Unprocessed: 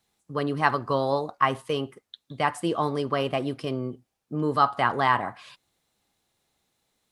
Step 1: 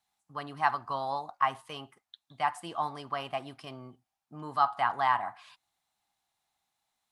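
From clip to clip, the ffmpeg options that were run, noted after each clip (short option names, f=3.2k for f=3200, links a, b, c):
-af "lowshelf=f=610:t=q:w=3:g=-7,volume=-7.5dB"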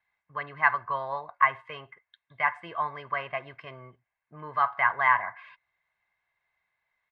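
-af "lowpass=f=2k:t=q:w=5.2,aecho=1:1:1.9:0.63,volume=-1.5dB"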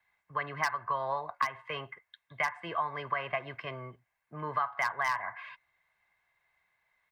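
-filter_complex "[0:a]acrossover=split=170|320|1300[a][b][c][d];[d]aeval=exprs='0.0841*(abs(mod(val(0)/0.0841+3,4)-2)-1)':c=same[e];[a][b][c][e]amix=inputs=4:normalize=0,acompressor=threshold=-32dB:ratio=6,volume=4dB"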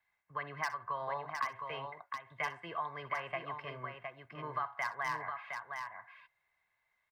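-af "aecho=1:1:63|713:0.15|0.531,volume=-6dB"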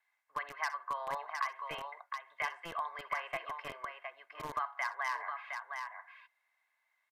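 -filter_complex "[0:a]acrossover=split=530[a][b];[a]acrusher=bits=6:mix=0:aa=0.000001[c];[c][b]amix=inputs=2:normalize=0,aresample=32000,aresample=44100,volume=1dB"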